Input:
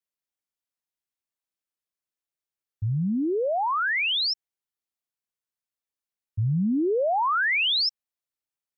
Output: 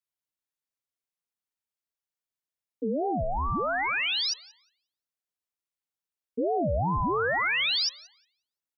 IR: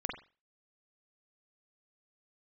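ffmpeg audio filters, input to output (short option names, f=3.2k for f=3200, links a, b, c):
-filter_complex "[0:a]asplit=2[a][b];[b]adelay=179,lowpass=f=1.9k:p=1,volume=-15dB,asplit=2[c][d];[d]adelay=179,lowpass=f=1.9k:p=1,volume=0.41,asplit=2[e][f];[f]adelay=179,lowpass=f=1.9k:p=1,volume=0.41,asplit=2[g][h];[h]adelay=179,lowpass=f=1.9k:p=1,volume=0.41[i];[a][c][e][g][i]amix=inputs=5:normalize=0,aeval=exprs='val(0)*sin(2*PI*460*n/s+460*0.3/2.6*sin(2*PI*2.6*n/s))':c=same"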